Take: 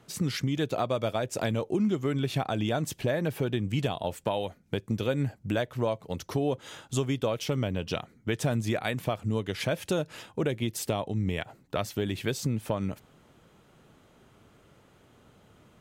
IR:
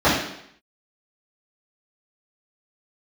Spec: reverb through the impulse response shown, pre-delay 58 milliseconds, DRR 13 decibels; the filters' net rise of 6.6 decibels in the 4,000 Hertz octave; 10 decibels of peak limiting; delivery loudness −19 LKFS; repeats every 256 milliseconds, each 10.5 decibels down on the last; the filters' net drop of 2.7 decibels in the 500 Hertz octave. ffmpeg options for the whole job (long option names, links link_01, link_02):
-filter_complex "[0:a]equalizer=frequency=500:width_type=o:gain=-3.5,equalizer=frequency=4000:width_type=o:gain=8.5,alimiter=limit=-22dB:level=0:latency=1,aecho=1:1:256|512|768:0.299|0.0896|0.0269,asplit=2[link_01][link_02];[1:a]atrim=start_sample=2205,adelay=58[link_03];[link_02][link_03]afir=irnorm=-1:irlink=0,volume=-36dB[link_04];[link_01][link_04]amix=inputs=2:normalize=0,volume=13.5dB"